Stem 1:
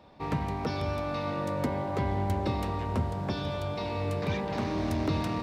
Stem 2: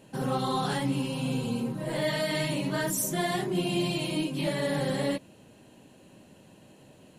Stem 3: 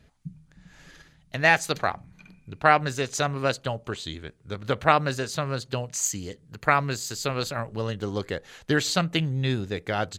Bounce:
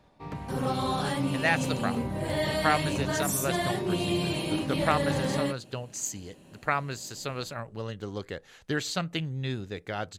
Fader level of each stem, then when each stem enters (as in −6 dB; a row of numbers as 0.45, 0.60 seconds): −7.5, −0.5, −6.5 decibels; 0.00, 0.35, 0.00 seconds